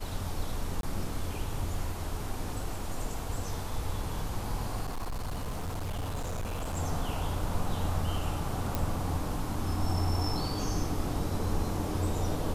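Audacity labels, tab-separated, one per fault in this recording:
0.810000	0.830000	gap 22 ms
4.850000	6.780000	clipped -30.5 dBFS
8.750000	8.750000	pop

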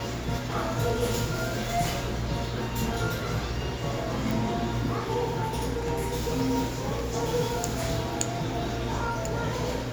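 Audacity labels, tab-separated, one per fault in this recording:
4.310000	4.310000	pop

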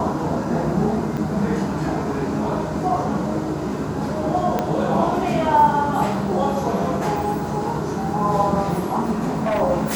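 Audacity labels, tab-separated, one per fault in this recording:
1.170000	1.170000	gap 4.6 ms
4.590000	4.590000	pop -8 dBFS
9.120000	9.620000	clipped -17.5 dBFS

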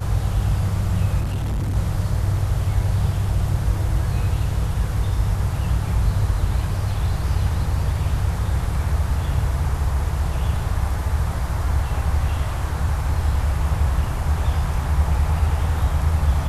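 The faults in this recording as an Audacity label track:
1.200000	1.760000	clipped -20 dBFS

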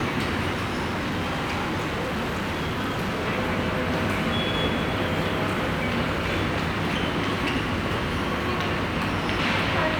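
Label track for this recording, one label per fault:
0.510000	3.280000	clipped -23.5 dBFS

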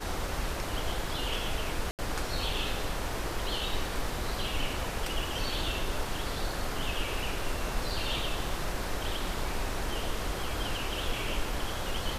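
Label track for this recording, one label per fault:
1.910000	1.990000	gap 78 ms

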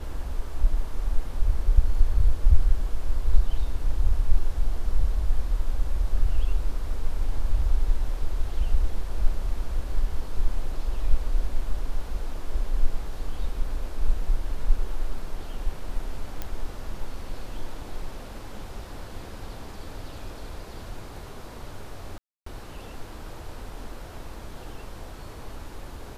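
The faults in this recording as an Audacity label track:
16.420000	16.420000	pop -16 dBFS
22.180000	22.460000	gap 0.284 s

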